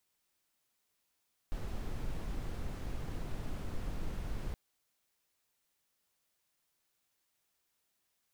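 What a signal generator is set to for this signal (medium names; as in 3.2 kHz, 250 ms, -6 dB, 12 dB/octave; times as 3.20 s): noise brown, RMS -37 dBFS 3.02 s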